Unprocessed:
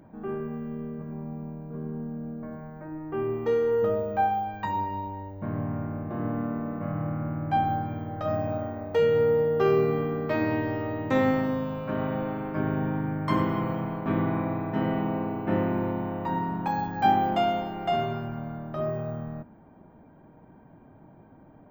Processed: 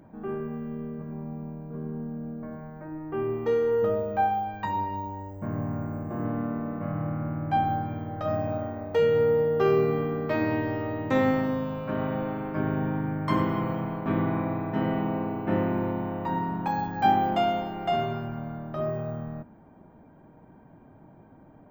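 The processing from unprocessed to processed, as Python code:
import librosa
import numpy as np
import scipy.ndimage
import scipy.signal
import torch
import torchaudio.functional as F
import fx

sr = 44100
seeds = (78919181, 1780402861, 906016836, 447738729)

y = fx.high_shelf_res(x, sr, hz=6000.0, db=11.0, q=3.0, at=(4.96, 6.25))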